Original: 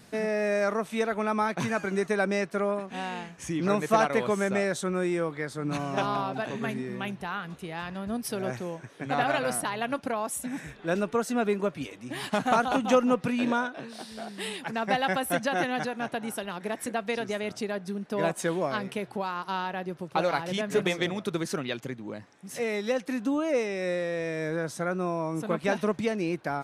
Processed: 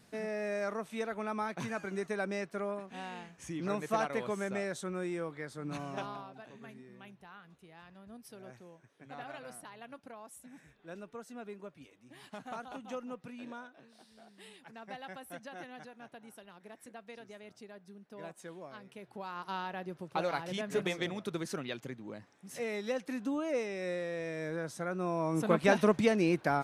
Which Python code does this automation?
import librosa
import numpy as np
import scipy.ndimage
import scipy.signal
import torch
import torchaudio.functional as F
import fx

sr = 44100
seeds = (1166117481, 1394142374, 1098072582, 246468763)

y = fx.gain(x, sr, db=fx.line((5.9, -9.0), (6.34, -19.0), (18.86, -19.0), (19.43, -7.0), (24.9, -7.0), (25.44, 1.0)))